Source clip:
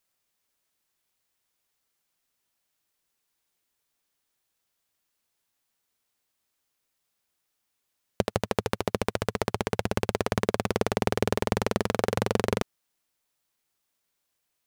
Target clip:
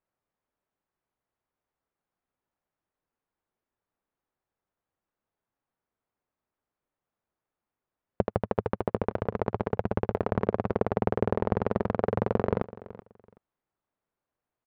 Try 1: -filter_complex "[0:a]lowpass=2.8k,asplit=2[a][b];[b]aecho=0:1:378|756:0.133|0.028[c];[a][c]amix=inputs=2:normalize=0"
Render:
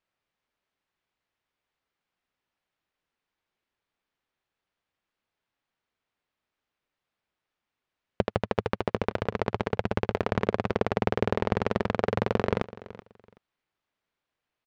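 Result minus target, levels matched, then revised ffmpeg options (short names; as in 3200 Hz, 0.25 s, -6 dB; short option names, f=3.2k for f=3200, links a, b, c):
2000 Hz band +6.0 dB
-filter_complex "[0:a]lowpass=1.2k,asplit=2[a][b];[b]aecho=0:1:378|756:0.133|0.028[c];[a][c]amix=inputs=2:normalize=0"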